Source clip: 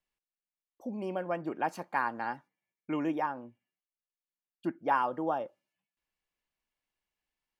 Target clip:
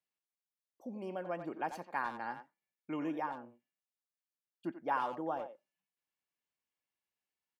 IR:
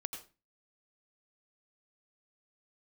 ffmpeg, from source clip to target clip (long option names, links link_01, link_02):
-filter_complex "[0:a]highpass=98,asplit=2[link_01][link_02];[link_02]adelay=90,highpass=300,lowpass=3400,asoftclip=type=hard:threshold=-25dB,volume=-9dB[link_03];[link_01][link_03]amix=inputs=2:normalize=0,volume=-6dB"